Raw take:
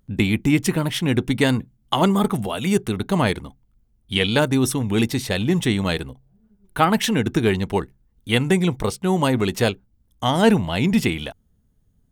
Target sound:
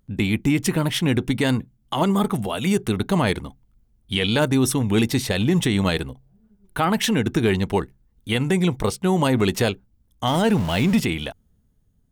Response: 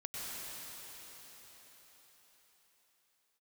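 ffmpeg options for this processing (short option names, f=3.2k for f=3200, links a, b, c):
-filter_complex "[0:a]asettb=1/sr,asplit=3[a][b][c];[a]atrim=end=10.274[d];[b]atrim=start=10.27:end=11,asetpts=PTS-STARTPTS,afade=t=in:d=0.004:c=qsin,afade=t=out:st=0.726:d=0.004:c=qsin,aeval=exprs='val(0)+0.5*0.0447*sgn(val(0))':c=same[e];[c]atrim=start=10.996[f];[d][e]acrossfade=d=0.004:c1=hsin:c2=qsin[g];[g][f]acrossfade=d=0.004:c1=qsin:c2=hsin,dynaudnorm=f=140:g=9:m=5.5dB,alimiter=level_in=7dB:limit=-1dB:release=50:level=0:latency=1,volume=-8.5dB"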